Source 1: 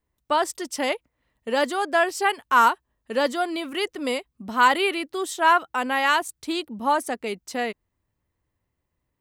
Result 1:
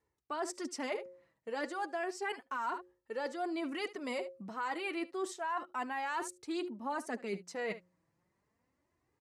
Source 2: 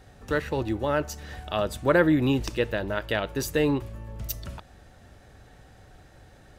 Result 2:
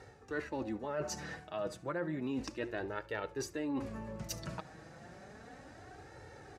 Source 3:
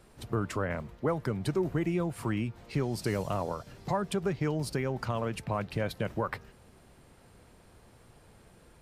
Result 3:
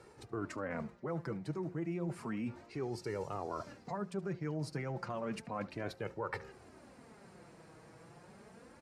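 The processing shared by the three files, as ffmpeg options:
-filter_complex "[0:a]highpass=120,lowpass=7k,bandreject=f=179.4:t=h:w=4,bandreject=f=358.8:t=h:w=4,bandreject=f=538.2:t=h:w=4,flanger=delay=2.2:depth=4.1:regen=18:speed=0.32:shape=sinusoidal,equalizer=f=3.3k:w=2.3:g=-8.5,asplit=2[a][b];[b]aecho=0:1:74:0.0794[c];[a][c]amix=inputs=2:normalize=0,alimiter=limit=-19dB:level=0:latency=1:release=207,areverse,acompressor=threshold=-44dB:ratio=4,areverse,volume=6.5dB"

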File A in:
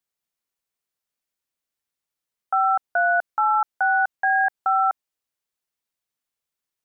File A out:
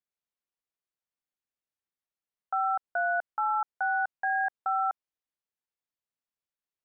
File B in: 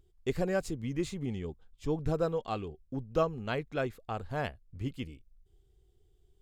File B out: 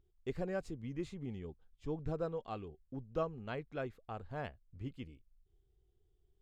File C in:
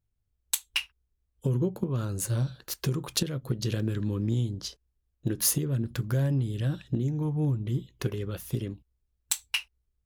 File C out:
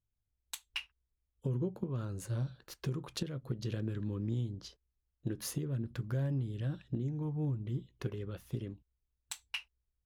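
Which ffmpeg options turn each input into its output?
-af "lowpass=f=3k:p=1,volume=-7.5dB"

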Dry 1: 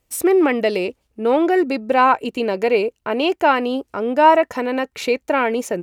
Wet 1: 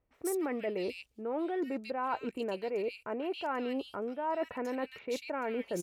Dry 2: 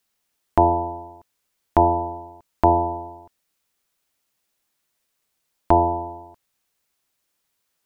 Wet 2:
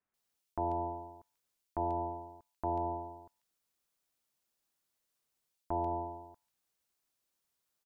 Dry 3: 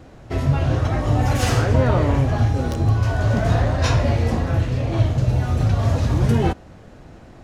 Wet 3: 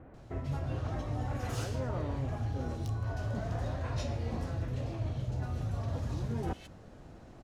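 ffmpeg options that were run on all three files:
-filter_complex "[0:a]areverse,acompressor=threshold=-23dB:ratio=6,areverse,acrossover=split=2200[a][b];[b]adelay=140[c];[a][c]amix=inputs=2:normalize=0,volume=-8.5dB"

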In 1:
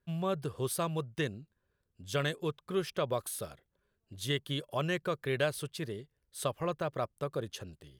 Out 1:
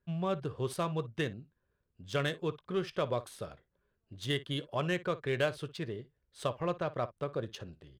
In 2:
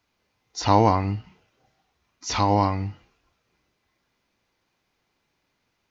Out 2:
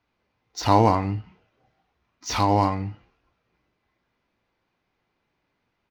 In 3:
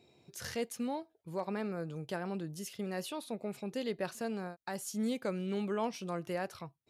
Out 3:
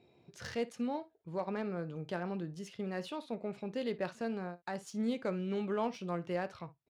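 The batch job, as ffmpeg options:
-af "aecho=1:1:17|57:0.188|0.141,adynamicsmooth=sensitivity=8:basefreq=3.7k"

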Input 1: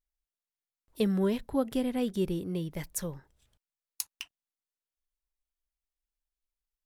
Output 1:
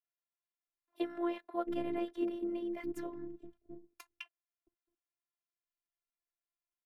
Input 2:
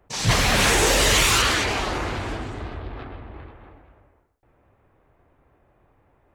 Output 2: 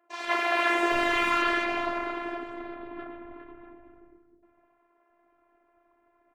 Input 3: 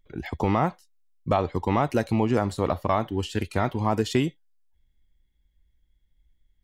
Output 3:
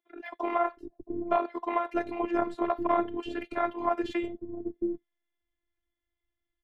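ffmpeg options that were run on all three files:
-filter_complex "[0:a]acrossover=split=2900[a][b];[b]asoftclip=type=tanh:threshold=-25dB[c];[a][c]amix=inputs=2:normalize=0,acrossover=split=190 2800:gain=0.0891 1 0.0891[d][e][f];[d][e][f]amix=inputs=3:normalize=0,acrossover=split=330[g][h];[g]adelay=670[i];[i][h]amix=inputs=2:normalize=0,aeval=exprs='val(0)*sin(2*PI*68*n/s)':c=same,afftfilt=real='hypot(re,im)*cos(PI*b)':imag='0':win_size=512:overlap=0.75,volume=4.5dB"

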